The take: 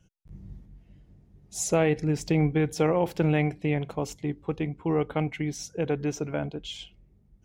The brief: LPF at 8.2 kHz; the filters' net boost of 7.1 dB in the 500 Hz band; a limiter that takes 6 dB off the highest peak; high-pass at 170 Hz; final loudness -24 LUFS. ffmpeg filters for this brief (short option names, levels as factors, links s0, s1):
-af "highpass=170,lowpass=8200,equalizer=f=500:t=o:g=8,volume=1.26,alimiter=limit=0.266:level=0:latency=1"